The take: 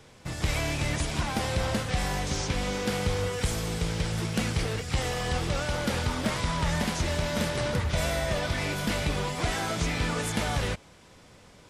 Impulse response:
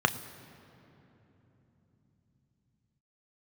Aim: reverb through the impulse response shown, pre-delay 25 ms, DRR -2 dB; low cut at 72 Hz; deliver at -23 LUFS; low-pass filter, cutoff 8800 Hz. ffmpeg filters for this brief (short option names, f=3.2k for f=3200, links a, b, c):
-filter_complex "[0:a]highpass=72,lowpass=8.8k,asplit=2[a][b];[1:a]atrim=start_sample=2205,adelay=25[c];[b][c]afir=irnorm=-1:irlink=0,volume=-10.5dB[d];[a][d]amix=inputs=2:normalize=0,volume=2.5dB"